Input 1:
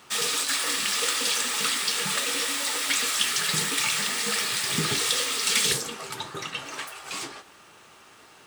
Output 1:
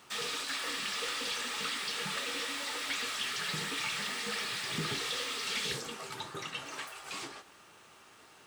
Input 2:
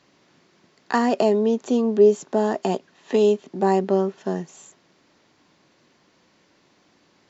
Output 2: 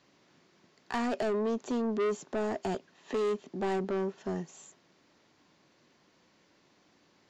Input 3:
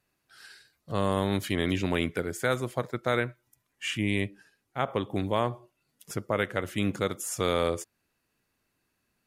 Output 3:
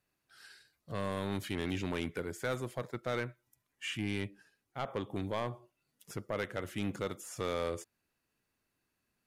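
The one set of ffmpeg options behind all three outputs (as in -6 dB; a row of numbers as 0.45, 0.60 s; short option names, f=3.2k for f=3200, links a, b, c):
-filter_complex "[0:a]asoftclip=type=tanh:threshold=-21dB,acrossover=split=5100[a][b];[b]acompressor=threshold=-41dB:ratio=4:attack=1:release=60[c];[a][c]amix=inputs=2:normalize=0,volume=-5.5dB"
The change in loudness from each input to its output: -10.0, -11.5, -8.5 LU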